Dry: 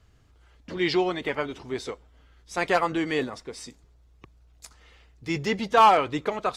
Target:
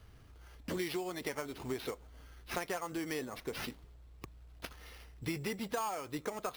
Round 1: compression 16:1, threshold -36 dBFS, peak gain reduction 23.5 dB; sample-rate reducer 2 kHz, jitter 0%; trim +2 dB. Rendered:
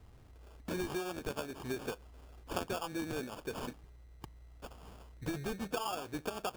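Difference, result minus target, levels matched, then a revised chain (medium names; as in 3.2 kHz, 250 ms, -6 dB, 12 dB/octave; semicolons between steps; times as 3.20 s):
sample-rate reducer: distortion +8 dB
compression 16:1, threshold -36 dBFS, peak gain reduction 23.5 dB; sample-rate reducer 7.7 kHz, jitter 0%; trim +2 dB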